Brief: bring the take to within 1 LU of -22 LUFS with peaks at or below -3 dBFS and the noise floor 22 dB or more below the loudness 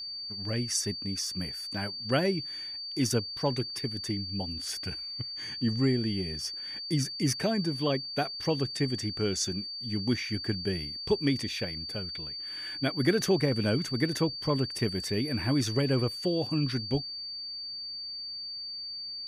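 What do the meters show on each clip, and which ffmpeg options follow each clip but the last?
steady tone 4600 Hz; tone level -36 dBFS; loudness -30.5 LUFS; peak -13.0 dBFS; loudness target -22.0 LUFS
-> -af "bandreject=f=4.6k:w=30"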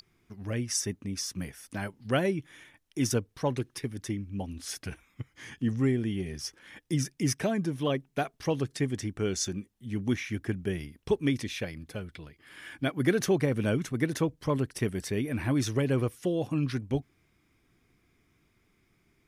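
steady tone none; loudness -31.0 LUFS; peak -13.5 dBFS; loudness target -22.0 LUFS
-> -af "volume=9dB"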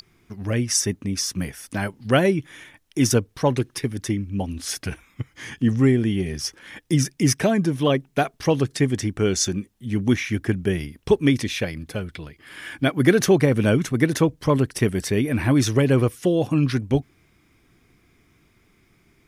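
loudness -22.0 LUFS; peak -4.5 dBFS; noise floor -61 dBFS

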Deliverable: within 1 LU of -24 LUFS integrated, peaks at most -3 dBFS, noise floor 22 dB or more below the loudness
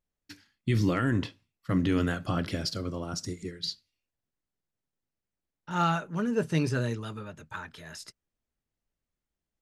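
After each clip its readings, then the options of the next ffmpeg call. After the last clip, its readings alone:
loudness -30.0 LUFS; peak -13.5 dBFS; loudness target -24.0 LUFS
-> -af "volume=6dB"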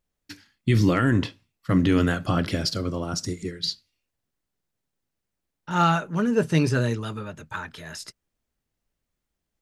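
loudness -24.0 LUFS; peak -7.5 dBFS; noise floor -83 dBFS

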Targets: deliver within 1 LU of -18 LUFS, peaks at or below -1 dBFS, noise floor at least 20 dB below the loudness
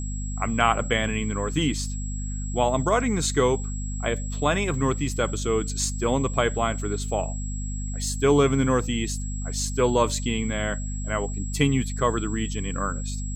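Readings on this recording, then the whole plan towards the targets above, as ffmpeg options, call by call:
hum 50 Hz; harmonics up to 250 Hz; hum level -28 dBFS; steady tone 7700 Hz; tone level -38 dBFS; loudness -25.5 LUFS; peak -5.0 dBFS; loudness target -18.0 LUFS
-> -af "bandreject=f=50:t=h:w=6,bandreject=f=100:t=h:w=6,bandreject=f=150:t=h:w=6,bandreject=f=200:t=h:w=6,bandreject=f=250:t=h:w=6"
-af "bandreject=f=7.7k:w=30"
-af "volume=7.5dB,alimiter=limit=-1dB:level=0:latency=1"

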